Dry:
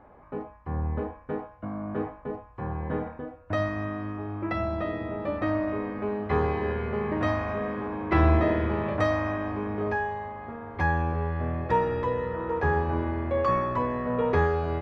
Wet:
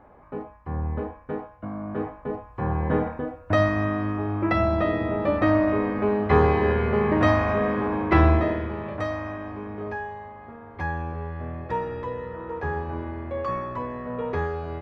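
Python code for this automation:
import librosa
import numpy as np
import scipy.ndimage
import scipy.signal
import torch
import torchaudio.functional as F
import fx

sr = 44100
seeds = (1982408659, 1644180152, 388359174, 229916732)

y = fx.gain(x, sr, db=fx.line((1.96, 1.0), (2.71, 7.0), (7.98, 7.0), (8.71, -4.0)))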